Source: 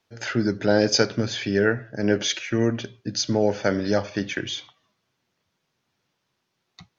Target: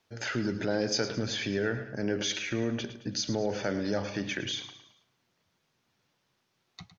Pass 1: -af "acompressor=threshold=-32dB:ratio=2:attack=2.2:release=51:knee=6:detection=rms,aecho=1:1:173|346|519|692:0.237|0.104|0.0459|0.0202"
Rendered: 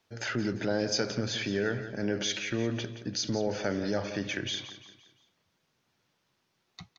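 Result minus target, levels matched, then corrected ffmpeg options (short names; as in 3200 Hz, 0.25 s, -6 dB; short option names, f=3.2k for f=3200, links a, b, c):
echo 64 ms late
-af "acompressor=threshold=-32dB:ratio=2:attack=2.2:release=51:knee=6:detection=rms,aecho=1:1:109|218|327|436:0.237|0.104|0.0459|0.0202"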